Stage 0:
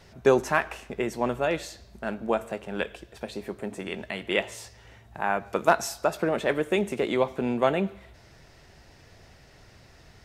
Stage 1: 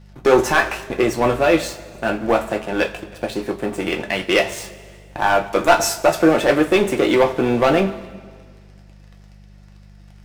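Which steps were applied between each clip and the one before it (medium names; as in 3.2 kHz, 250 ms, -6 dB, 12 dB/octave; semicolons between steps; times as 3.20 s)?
waveshaping leveller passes 3; two-slope reverb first 0.2 s, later 1.9 s, from -20 dB, DRR 2 dB; mains buzz 50 Hz, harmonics 4, -44 dBFS -4 dB/octave; trim -1 dB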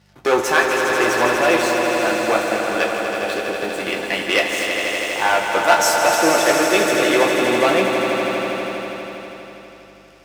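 high-pass 70 Hz; bass shelf 390 Hz -11.5 dB; echo with a slow build-up 81 ms, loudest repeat 5, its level -8 dB; trim +1 dB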